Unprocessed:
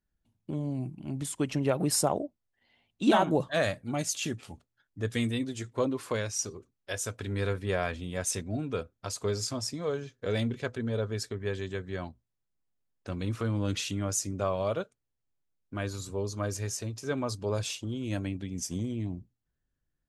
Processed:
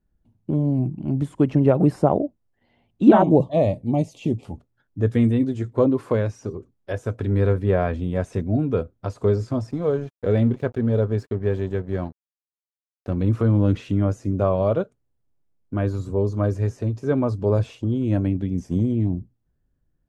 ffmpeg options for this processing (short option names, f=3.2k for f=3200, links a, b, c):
-filter_complex "[0:a]asettb=1/sr,asplit=3[a][b][c];[a]atrim=end=3.224[d];[b]atrim=start=3.22:end=4.45,asetpts=PTS-STARTPTS,afade=t=in:d=0.004:c=qsin,afade=t=out:st=1.226:d=0.004:c=qsin,asuperstop=centerf=1500:order=4:qfactor=1.1[e];[c]atrim=start=4.446[f];[d][e]acrossfade=d=0.004:c1=hsin:c2=qsin[g];[g][f]acrossfade=d=0.004:c1=qsin:c2=hsin,asettb=1/sr,asplit=3[h][i][j];[h]atrim=end=9.714[k];[i]atrim=start=9.71:end=13.17,asetpts=PTS-STARTPTS,afade=t=in:d=0.004:c=qsin,afade=t=out:st=3.456:d=0.004:c=qsin,aeval=exprs='sgn(val(0))*max(abs(val(0))-0.00299,0)':c=same[l];[j]atrim=start=13.166[m];[k][l]acrossfade=d=0.004:c1=hsin:c2=qsin[n];[n][m]acrossfade=d=0.004:c1=qsin:c2=hsin,acrossover=split=2800[o][p];[p]acompressor=threshold=-47dB:ratio=4:attack=1:release=60[q];[o][q]amix=inputs=2:normalize=0,tiltshelf=f=1.3k:g=9,volume=3.5dB"